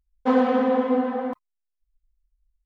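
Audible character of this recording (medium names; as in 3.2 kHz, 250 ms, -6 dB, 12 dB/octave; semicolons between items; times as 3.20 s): noise floor -80 dBFS; spectral tilt -0.5 dB/octave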